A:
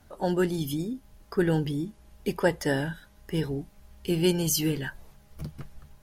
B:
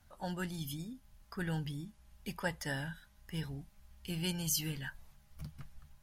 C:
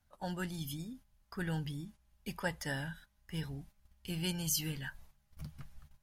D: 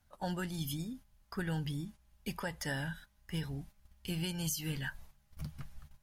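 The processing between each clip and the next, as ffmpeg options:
-af "equalizer=f=390:w=1.2:g=-15,volume=0.473"
-af "agate=range=0.316:threshold=0.002:ratio=16:detection=peak"
-af "alimiter=level_in=1.88:limit=0.0631:level=0:latency=1:release=198,volume=0.531,volume=1.5"

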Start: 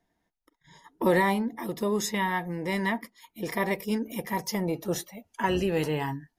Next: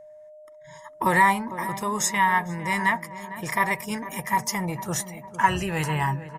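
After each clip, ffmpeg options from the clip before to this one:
-filter_complex "[0:a]equalizer=f=125:t=o:w=1:g=11,equalizer=f=250:t=o:w=1:g=-7,equalizer=f=500:t=o:w=1:g=-7,equalizer=f=1000:t=o:w=1:g=10,equalizer=f=2000:t=o:w=1:g=6,equalizer=f=4000:t=o:w=1:g=-4,equalizer=f=8000:t=o:w=1:g=12,aeval=exprs='val(0)+0.00631*sin(2*PI*610*n/s)':c=same,asplit=2[s0][s1];[s1]adelay=453,lowpass=f=1300:p=1,volume=0.237,asplit=2[s2][s3];[s3]adelay=453,lowpass=f=1300:p=1,volume=0.51,asplit=2[s4][s5];[s5]adelay=453,lowpass=f=1300:p=1,volume=0.51,asplit=2[s6][s7];[s7]adelay=453,lowpass=f=1300:p=1,volume=0.51,asplit=2[s8][s9];[s9]adelay=453,lowpass=f=1300:p=1,volume=0.51[s10];[s0][s2][s4][s6][s8][s10]amix=inputs=6:normalize=0"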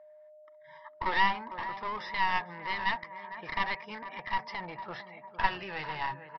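-af "bandpass=f=1400:t=q:w=0.67:csg=0,aresample=11025,aeval=exprs='clip(val(0),-1,0.0224)':c=same,aresample=44100,volume=0.668"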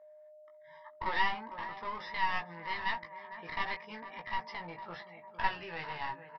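-filter_complex "[0:a]asplit=2[s0][s1];[s1]adelay=18,volume=0.596[s2];[s0][s2]amix=inputs=2:normalize=0,volume=0.562"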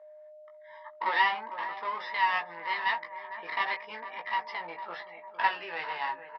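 -af "highpass=450,lowpass=4200,volume=2"

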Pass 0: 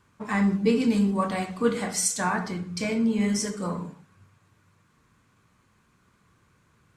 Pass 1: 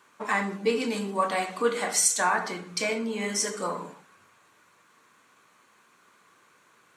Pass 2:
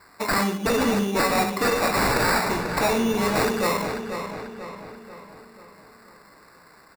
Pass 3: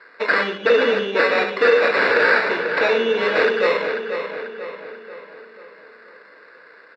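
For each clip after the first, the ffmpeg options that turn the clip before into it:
-filter_complex "[0:a]asplit=2[s0][s1];[s1]acompressor=threshold=0.0251:ratio=6,volume=1.26[s2];[s0][s2]amix=inputs=2:normalize=0,highpass=440,bandreject=f=5000:w=13"
-filter_complex "[0:a]acrusher=samples=14:mix=1:aa=0.000001,aeval=exprs='0.0668*(abs(mod(val(0)/0.0668+3,4)-2)-1)':c=same,asplit=2[s0][s1];[s1]adelay=490,lowpass=f=4400:p=1,volume=0.422,asplit=2[s2][s3];[s3]adelay=490,lowpass=f=4400:p=1,volume=0.51,asplit=2[s4][s5];[s5]adelay=490,lowpass=f=4400:p=1,volume=0.51,asplit=2[s6][s7];[s7]adelay=490,lowpass=f=4400:p=1,volume=0.51,asplit=2[s8][s9];[s9]adelay=490,lowpass=f=4400:p=1,volume=0.51,asplit=2[s10][s11];[s11]adelay=490,lowpass=f=4400:p=1,volume=0.51[s12];[s2][s4][s6][s8][s10][s12]amix=inputs=6:normalize=0[s13];[s0][s13]amix=inputs=2:normalize=0,volume=2.37"
-af "highpass=420,equalizer=f=480:t=q:w=4:g=10,equalizer=f=780:t=q:w=4:g=-9,equalizer=f=1100:t=q:w=4:g=-5,equalizer=f=1600:t=q:w=4:g=8,equalizer=f=3100:t=q:w=4:g=7,lowpass=f=3800:w=0.5412,lowpass=f=3800:w=1.3066,volume=1.58"

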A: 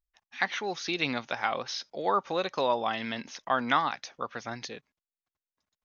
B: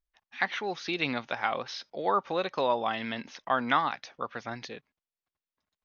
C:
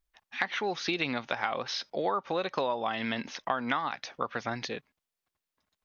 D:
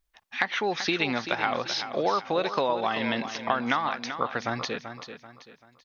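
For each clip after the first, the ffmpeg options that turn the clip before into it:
-af "lowpass=4300"
-af "acompressor=threshold=0.0251:ratio=6,volume=1.88"
-af "aecho=1:1:386|772|1158|1544:0.316|0.114|0.041|0.0148,volume=1.58"

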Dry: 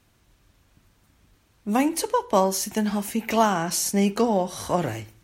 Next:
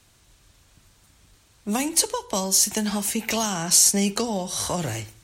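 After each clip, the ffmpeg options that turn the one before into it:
-filter_complex "[0:a]equalizer=f=250:t=o:w=1:g=-4,equalizer=f=4000:t=o:w=1:g=4,equalizer=f=8000:t=o:w=1:g=8,acrossover=split=220|3000[s0][s1][s2];[s1]acompressor=threshold=0.0355:ratio=6[s3];[s0][s3][s2]amix=inputs=3:normalize=0,volume=1.41"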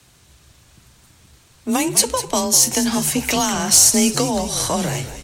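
-filter_complex "[0:a]afreqshift=27,acontrast=43,asplit=6[s0][s1][s2][s3][s4][s5];[s1]adelay=200,afreqshift=-85,volume=0.251[s6];[s2]adelay=400,afreqshift=-170,volume=0.117[s7];[s3]adelay=600,afreqshift=-255,volume=0.0556[s8];[s4]adelay=800,afreqshift=-340,volume=0.026[s9];[s5]adelay=1000,afreqshift=-425,volume=0.0123[s10];[s0][s6][s7][s8][s9][s10]amix=inputs=6:normalize=0"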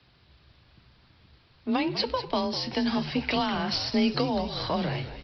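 -af "aresample=11025,aresample=44100,volume=0.473"

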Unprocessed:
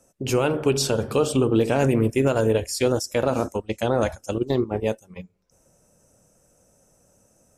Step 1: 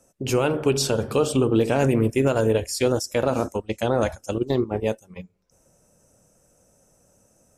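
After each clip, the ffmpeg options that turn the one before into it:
-af anull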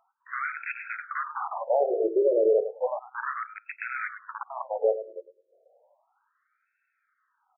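-filter_complex "[0:a]aecho=1:1:104|208|312:0.2|0.0539|0.0145,asplit=2[s0][s1];[s1]aeval=exprs='(mod(7.08*val(0)+1,2)-1)/7.08':c=same,volume=0.562[s2];[s0][s2]amix=inputs=2:normalize=0,afftfilt=real='re*between(b*sr/1024,450*pow(1900/450,0.5+0.5*sin(2*PI*0.33*pts/sr))/1.41,450*pow(1900/450,0.5+0.5*sin(2*PI*0.33*pts/sr))*1.41)':imag='im*between(b*sr/1024,450*pow(1900/450,0.5+0.5*sin(2*PI*0.33*pts/sr))/1.41,450*pow(1900/450,0.5+0.5*sin(2*PI*0.33*pts/sr))*1.41)':win_size=1024:overlap=0.75"

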